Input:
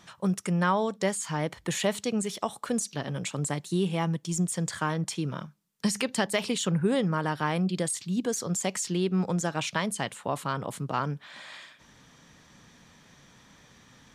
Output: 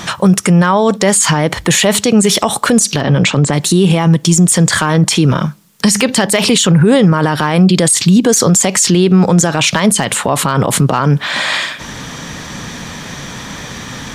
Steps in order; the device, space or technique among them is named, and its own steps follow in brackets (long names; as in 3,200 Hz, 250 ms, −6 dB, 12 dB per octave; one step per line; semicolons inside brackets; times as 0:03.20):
0:03.02–0:03.53: high-frequency loss of the air 120 metres
loud club master (downward compressor 2 to 1, threshold −30 dBFS, peak gain reduction 6 dB; hard clipping −19.5 dBFS, distortion −31 dB; boost into a limiter +30 dB)
level −1 dB